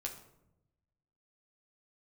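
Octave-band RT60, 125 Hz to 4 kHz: 1.5 s, 1.2 s, 1.0 s, 0.75 s, 0.55 s, 0.45 s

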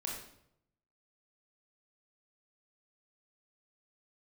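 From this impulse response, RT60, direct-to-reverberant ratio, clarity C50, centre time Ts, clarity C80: 0.75 s, -2.5 dB, 3.0 dB, 45 ms, 6.0 dB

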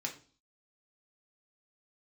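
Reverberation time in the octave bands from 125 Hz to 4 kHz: 0.50 s, 0.50 s, 0.45 s, 0.40 s, 0.35 s, 0.45 s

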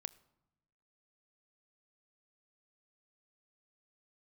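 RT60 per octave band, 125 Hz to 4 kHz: 1.3 s, 1.2 s, 1.0 s, 0.95 s, 0.75 s, 0.55 s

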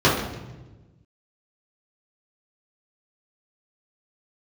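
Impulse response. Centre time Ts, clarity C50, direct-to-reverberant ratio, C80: 51 ms, 3.5 dB, -8.5 dB, 6.5 dB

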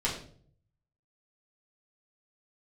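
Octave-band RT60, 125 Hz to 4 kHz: 1.1 s, 0.70 s, 0.60 s, 0.45 s, 0.40 s, 0.40 s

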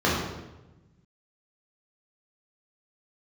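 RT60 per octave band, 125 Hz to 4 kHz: 1.8 s, 1.5 s, 1.1 s, 0.95 s, 0.85 s, 0.80 s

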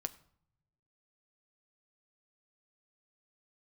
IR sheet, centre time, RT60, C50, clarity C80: 3 ms, 0.60 s, 18.5 dB, 20.5 dB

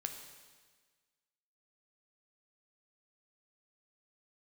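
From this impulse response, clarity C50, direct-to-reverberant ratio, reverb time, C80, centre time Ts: 7.0 dB, 4.5 dB, 1.5 s, 8.5 dB, 30 ms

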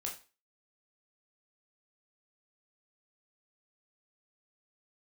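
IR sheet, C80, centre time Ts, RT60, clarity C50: 15.0 dB, 22 ms, 0.35 s, 9.5 dB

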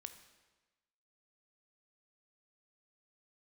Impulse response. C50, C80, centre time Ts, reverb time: 10.5 dB, 12.0 dB, 13 ms, 1.2 s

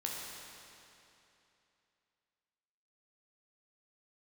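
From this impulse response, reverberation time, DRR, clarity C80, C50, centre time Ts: 2.9 s, -3.0 dB, 0.5 dB, -0.5 dB, 143 ms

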